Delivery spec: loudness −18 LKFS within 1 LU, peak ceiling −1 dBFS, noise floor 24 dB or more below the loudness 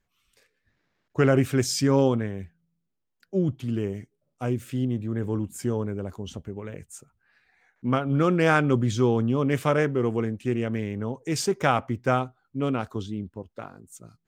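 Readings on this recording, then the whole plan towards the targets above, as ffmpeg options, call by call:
integrated loudness −25.5 LKFS; sample peak −7.5 dBFS; target loudness −18.0 LKFS
→ -af "volume=7.5dB,alimiter=limit=-1dB:level=0:latency=1"

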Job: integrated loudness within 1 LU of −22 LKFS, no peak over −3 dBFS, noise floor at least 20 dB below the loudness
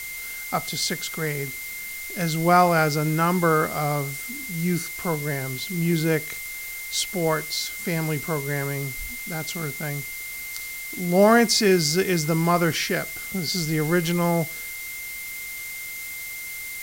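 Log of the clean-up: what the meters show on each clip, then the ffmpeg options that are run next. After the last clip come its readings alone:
interfering tone 2,100 Hz; level of the tone −34 dBFS; background noise floor −34 dBFS; target noise floor −44 dBFS; integrated loudness −24.0 LKFS; sample peak −5.0 dBFS; target loudness −22.0 LKFS
→ -af "bandreject=frequency=2100:width=30"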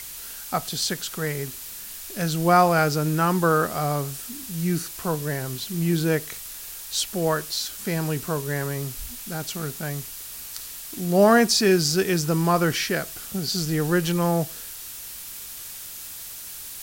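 interfering tone none found; background noise floor −38 dBFS; target noise floor −45 dBFS
→ -af "afftdn=noise_reduction=7:noise_floor=-38"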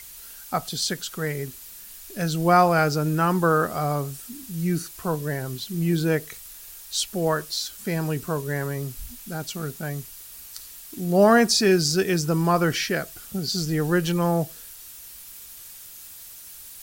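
background noise floor −43 dBFS; target noise floor −44 dBFS
→ -af "afftdn=noise_reduction=6:noise_floor=-43"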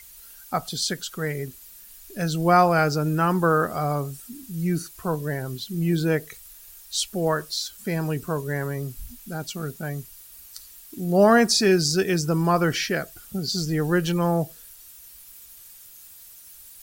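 background noise floor −47 dBFS; integrated loudness −24.0 LKFS; sample peak −5.5 dBFS; target loudness −22.0 LKFS
→ -af "volume=2dB"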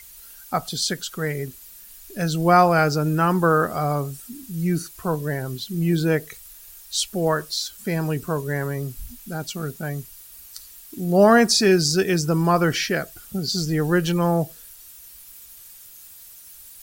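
integrated loudness −22.0 LKFS; sample peak −3.5 dBFS; background noise floor −45 dBFS

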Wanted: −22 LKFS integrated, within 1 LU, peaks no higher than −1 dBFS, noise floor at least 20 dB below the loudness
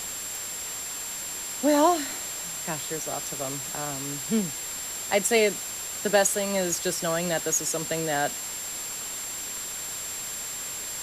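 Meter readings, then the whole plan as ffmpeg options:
interfering tone 7,400 Hz; level of the tone −34 dBFS; background noise floor −35 dBFS; target noise floor −47 dBFS; integrated loudness −27.0 LKFS; sample peak −9.0 dBFS; target loudness −22.0 LKFS
→ -af "bandreject=frequency=7400:width=30"
-af "afftdn=noise_reduction=12:noise_floor=-35"
-af "volume=5dB"

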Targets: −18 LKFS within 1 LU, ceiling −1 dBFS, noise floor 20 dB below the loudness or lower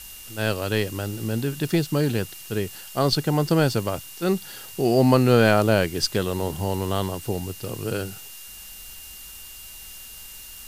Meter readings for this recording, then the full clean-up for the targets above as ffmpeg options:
interfering tone 2,800 Hz; level of the tone −47 dBFS; background noise floor −41 dBFS; target noise floor −44 dBFS; integrated loudness −23.5 LKFS; sample peak −4.0 dBFS; target loudness −18.0 LKFS
→ -af "bandreject=frequency=2800:width=30"
-af "afftdn=noise_reduction=6:noise_floor=-41"
-af "volume=5.5dB,alimiter=limit=-1dB:level=0:latency=1"

